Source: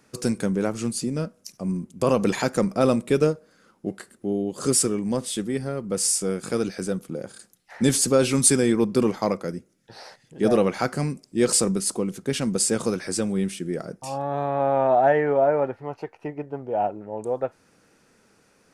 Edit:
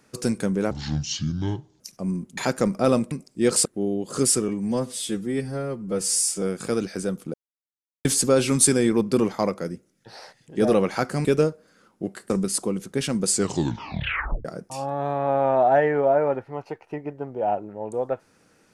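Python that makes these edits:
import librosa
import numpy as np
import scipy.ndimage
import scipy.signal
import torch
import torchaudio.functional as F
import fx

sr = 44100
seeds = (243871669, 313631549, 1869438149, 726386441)

y = fx.edit(x, sr, fx.speed_span(start_s=0.71, length_s=0.7, speed=0.64),
    fx.cut(start_s=1.98, length_s=0.36),
    fx.swap(start_s=3.08, length_s=1.05, other_s=11.08, other_length_s=0.54),
    fx.stretch_span(start_s=4.96, length_s=1.29, factor=1.5),
    fx.silence(start_s=7.17, length_s=0.71),
    fx.tape_stop(start_s=12.62, length_s=1.15), tone=tone)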